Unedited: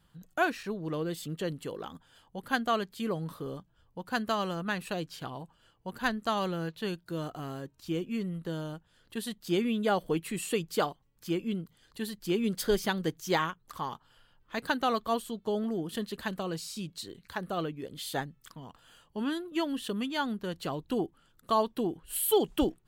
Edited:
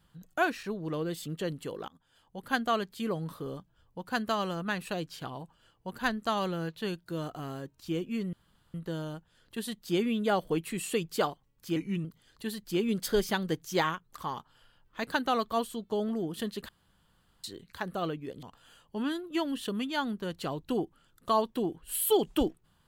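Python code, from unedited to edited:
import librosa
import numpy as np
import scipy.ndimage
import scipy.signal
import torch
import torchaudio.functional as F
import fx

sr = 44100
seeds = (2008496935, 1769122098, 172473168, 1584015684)

y = fx.edit(x, sr, fx.fade_in_from(start_s=1.88, length_s=0.65, floor_db=-18.0),
    fx.insert_room_tone(at_s=8.33, length_s=0.41),
    fx.speed_span(start_s=11.35, length_s=0.25, speed=0.87),
    fx.room_tone_fill(start_s=16.24, length_s=0.75),
    fx.cut(start_s=17.98, length_s=0.66), tone=tone)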